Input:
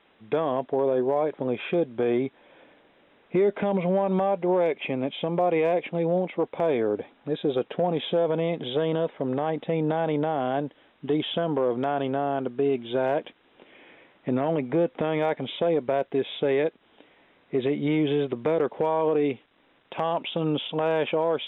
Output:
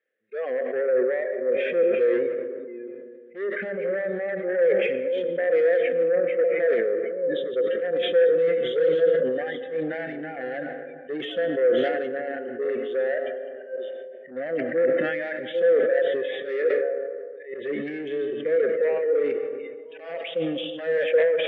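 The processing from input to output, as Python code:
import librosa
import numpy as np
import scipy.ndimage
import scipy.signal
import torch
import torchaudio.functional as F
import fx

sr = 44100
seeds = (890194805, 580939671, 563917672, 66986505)

y = fx.reverse_delay(x, sr, ms=608, wet_db=-8.0)
y = fx.noise_reduce_blind(y, sr, reduce_db=23)
y = fx.rider(y, sr, range_db=3, speed_s=2.0)
y = fx.cheby_harmonics(y, sr, harmonics=(3, 5), levels_db=(-17, -12), full_scale_db=-13.0)
y = fx.auto_swell(y, sr, attack_ms=110.0)
y = fx.double_bandpass(y, sr, hz=940.0, octaves=1.8)
y = fx.rev_freeverb(y, sr, rt60_s=2.2, hf_ratio=0.3, predelay_ms=60, drr_db=9.5)
y = fx.sustainer(y, sr, db_per_s=30.0)
y = y * librosa.db_to_amplitude(5.0)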